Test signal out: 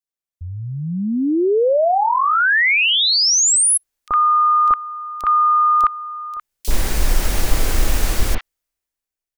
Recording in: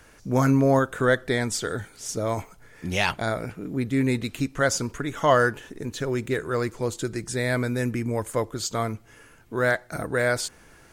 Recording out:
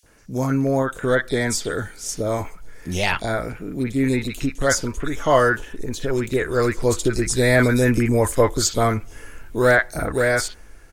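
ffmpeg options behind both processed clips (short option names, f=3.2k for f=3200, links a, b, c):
-filter_complex "[0:a]dynaudnorm=f=260:g=9:m=15.5dB,asubboost=boost=6.5:cutoff=51,acrossover=split=1000|3300[a][b][c];[a]adelay=30[d];[b]adelay=60[e];[d][e][c]amix=inputs=3:normalize=0,volume=-1dB"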